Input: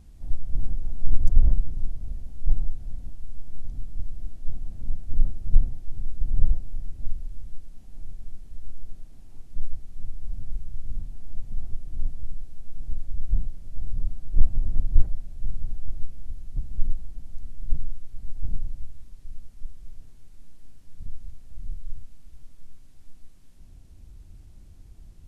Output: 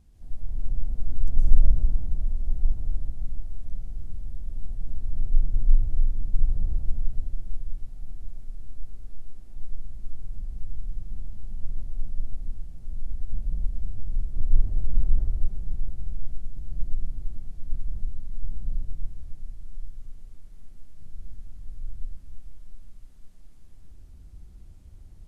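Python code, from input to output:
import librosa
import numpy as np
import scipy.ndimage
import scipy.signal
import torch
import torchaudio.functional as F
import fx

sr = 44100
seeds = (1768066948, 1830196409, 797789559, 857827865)

y = fx.echo_swing(x, sr, ms=743, ratio=3, feedback_pct=49, wet_db=-16.0)
y = fx.rev_plate(y, sr, seeds[0], rt60_s=2.6, hf_ratio=0.5, predelay_ms=110, drr_db=-5.0)
y = F.gain(torch.from_numpy(y), -7.5).numpy()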